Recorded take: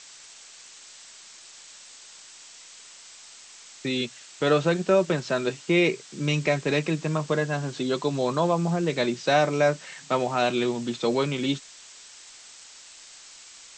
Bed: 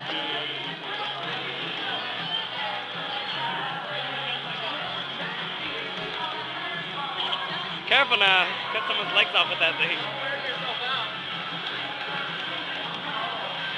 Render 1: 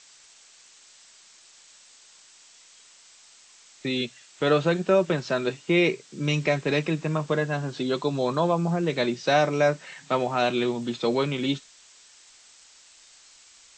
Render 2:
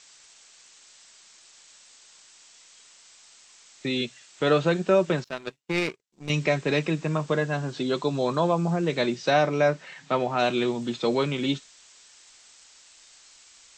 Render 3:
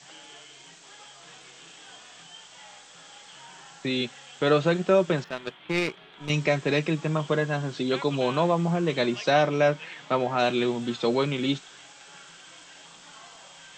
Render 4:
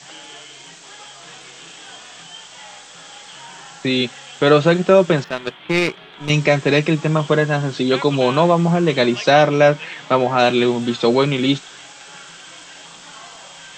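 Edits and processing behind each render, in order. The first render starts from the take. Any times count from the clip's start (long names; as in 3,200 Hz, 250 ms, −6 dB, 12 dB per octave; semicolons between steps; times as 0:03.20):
noise reduction from a noise print 6 dB
0:05.24–0:06.30: power curve on the samples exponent 2; 0:09.30–0:10.39: high-frequency loss of the air 72 metres
mix in bed −19 dB
level +9 dB; brickwall limiter −2 dBFS, peak gain reduction 1 dB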